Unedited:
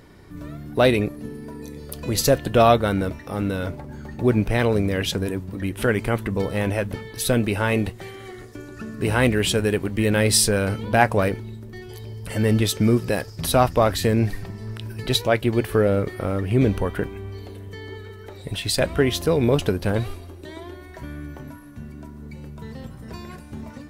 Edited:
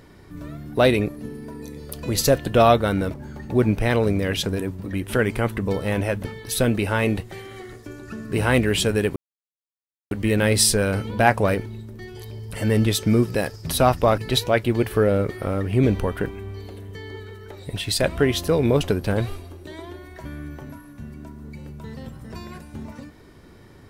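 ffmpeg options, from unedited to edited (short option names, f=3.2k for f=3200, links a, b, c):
-filter_complex "[0:a]asplit=4[a][b][c][d];[a]atrim=end=3.142[e];[b]atrim=start=3.828:end=9.85,asetpts=PTS-STARTPTS,afade=t=out:st=6.018:d=0.004:c=hsin,apad=pad_dur=0.95[f];[c]atrim=start=9.85:end=13.922,asetpts=PTS-STARTPTS,afade=t=in:d=0.004:c=hsin[g];[d]atrim=start=14.958[h];[f][g]concat=n=2:v=0:a=1[i];[e][i]acrossfade=d=0.004:c1=hsin:c2=hsin[j];[j][h]acrossfade=d=0.004:c1=hsin:c2=hsin"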